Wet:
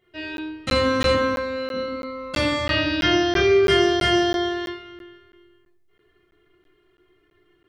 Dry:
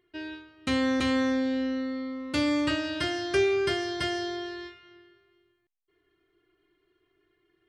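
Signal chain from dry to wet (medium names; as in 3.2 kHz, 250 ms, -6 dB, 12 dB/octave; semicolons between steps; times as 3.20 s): 1.12–1.74 s: tone controls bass -13 dB, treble -6 dB; 2.67–3.64 s: brick-wall FIR low-pass 6.6 kHz; reverberation RT60 0.60 s, pre-delay 10 ms, DRR -5.5 dB; crackling interface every 0.33 s, samples 512, zero, from 0.37 s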